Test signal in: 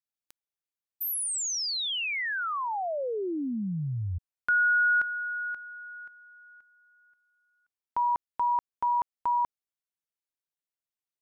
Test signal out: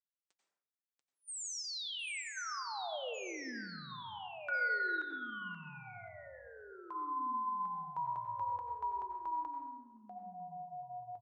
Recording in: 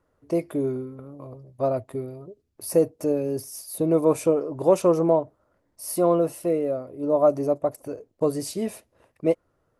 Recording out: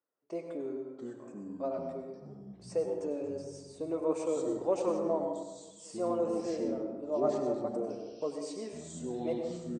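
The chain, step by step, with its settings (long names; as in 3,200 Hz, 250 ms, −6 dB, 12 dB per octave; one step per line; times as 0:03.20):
high-pass filter 300 Hz 12 dB per octave
slap from a distant wall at 270 metres, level −27 dB
flanger 1.9 Hz, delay 3.4 ms, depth 2 ms, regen −63%
delay with pitch and tempo change per echo 562 ms, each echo −6 semitones, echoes 3, each echo −6 dB
Butterworth low-pass 8,700 Hz 96 dB per octave
dense smooth reverb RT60 1.1 s, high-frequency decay 0.45×, pre-delay 80 ms, DRR 4 dB
noise gate with hold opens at −41 dBFS, hold 268 ms, range −9 dB
level −7.5 dB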